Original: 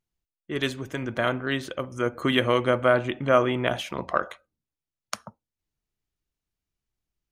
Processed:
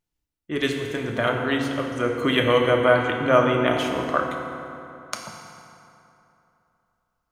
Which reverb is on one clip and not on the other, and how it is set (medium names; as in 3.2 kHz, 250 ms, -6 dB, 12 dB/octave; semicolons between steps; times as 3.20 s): FDN reverb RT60 3 s, high-frequency decay 0.6×, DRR 1 dB; trim +1 dB